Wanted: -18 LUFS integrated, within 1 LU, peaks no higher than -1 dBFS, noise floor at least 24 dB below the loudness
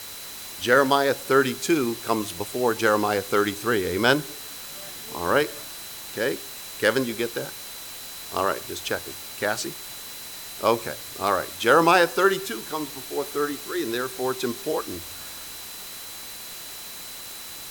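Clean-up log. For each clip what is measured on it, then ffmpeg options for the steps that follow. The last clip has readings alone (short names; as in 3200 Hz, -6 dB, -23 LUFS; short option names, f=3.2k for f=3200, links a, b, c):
steady tone 4000 Hz; tone level -44 dBFS; noise floor -38 dBFS; noise floor target -50 dBFS; loudness -25.5 LUFS; peak -4.5 dBFS; loudness target -18.0 LUFS
-> -af "bandreject=f=4k:w=30"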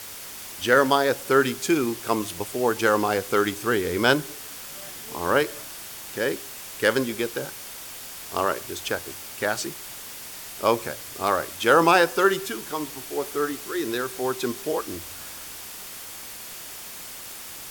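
steady tone none; noise floor -39 dBFS; noise floor target -49 dBFS
-> -af "afftdn=nr=10:nf=-39"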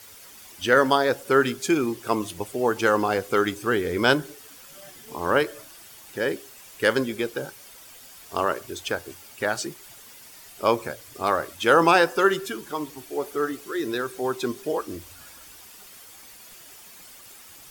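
noise floor -47 dBFS; noise floor target -49 dBFS
-> -af "afftdn=nr=6:nf=-47"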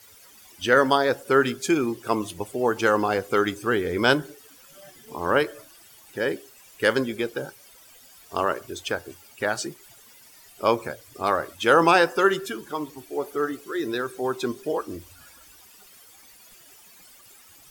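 noise floor -52 dBFS; loudness -24.5 LUFS; peak -4.0 dBFS; loudness target -18.0 LUFS
-> -af "volume=6.5dB,alimiter=limit=-1dB:level=0:latency=1"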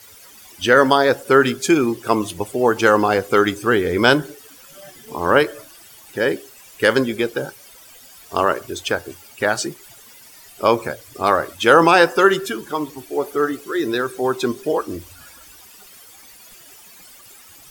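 loudness -18.5 LUFS; peak -1.0 dBFS; noise floor -45 dBFS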